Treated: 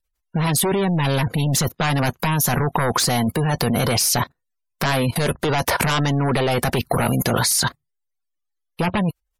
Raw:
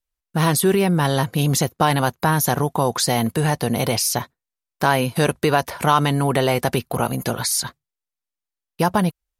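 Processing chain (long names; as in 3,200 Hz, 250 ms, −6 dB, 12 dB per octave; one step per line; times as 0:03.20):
sine wavefolder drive 12 dB, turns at −2.5 dBFS
output level in coarse steps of 19 dB
gate on every frequency bin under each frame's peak −30 dB strong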